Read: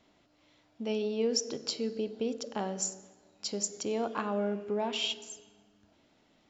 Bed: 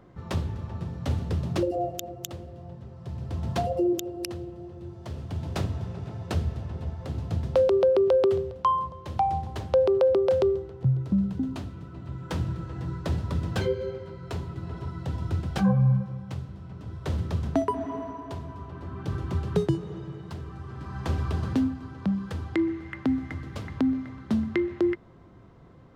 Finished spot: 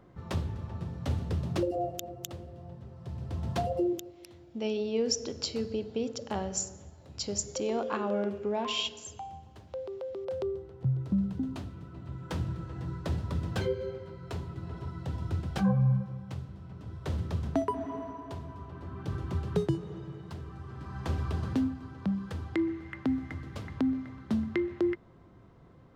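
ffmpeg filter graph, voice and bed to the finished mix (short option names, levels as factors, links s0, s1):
-filter_complex "[0:a]adelay=3750,volume=1.06[s0];[1:a]volume=3.16,afade=t=out:st=3.81:d=0.34:silence=0.199526,afade=t=in:st=10.13:d=0.92:silence=0.211349[s1];[s0][s1]amix=inputs=2:normalize=0"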